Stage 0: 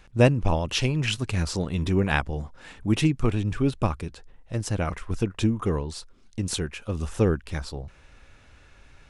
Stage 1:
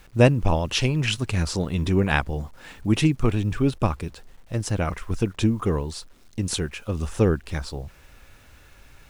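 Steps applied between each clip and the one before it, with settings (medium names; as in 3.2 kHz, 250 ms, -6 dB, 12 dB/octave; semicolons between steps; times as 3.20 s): bit crusher 10-bit; trim +2 dB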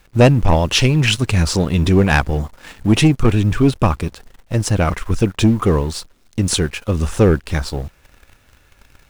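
waveshaping leveller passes 2; trim +1.5 dB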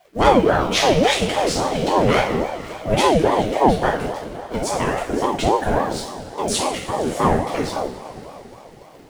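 two-slope reverb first 0.56 s, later 4.5 s, from -18 dB, DRR -4.5 dB; ring modulator with a swept carrier 510 Hz, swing 40%, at 3.6 Hz; trim -5.5 dB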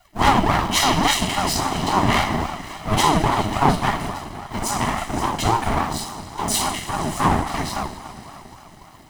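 comb filter that takes the minimum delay 1 ms; treble shelf 4.5 kHz +4.5 dB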